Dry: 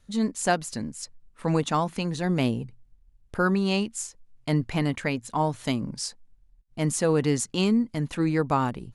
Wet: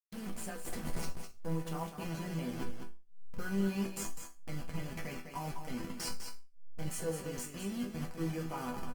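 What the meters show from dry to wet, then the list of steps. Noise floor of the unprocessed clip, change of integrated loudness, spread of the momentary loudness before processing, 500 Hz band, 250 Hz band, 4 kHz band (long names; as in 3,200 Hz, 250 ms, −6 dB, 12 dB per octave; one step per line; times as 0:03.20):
−60 dBFS, −13.5 dB, 12 LU, −14.5 dB, −13.0 dB, −13.0 dB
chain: hold until the input has moved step −26.5 dBFS
reversed playback
downward compressor 10 to 1, threshold −35 dBFS, peak gain reduction 17.5 dB
reversed playback
brickwall limiter −32.5 dBFS, peak gain reduction 9 dB
notch filter 3,700 Hz, Q 6.2
resonators tuned to a chord E3 minor, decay 0.29 s
single-tap delay 202 ms −7.5 dB
level +17.5 dB
Opus 24 kbit/s 48,000 Hz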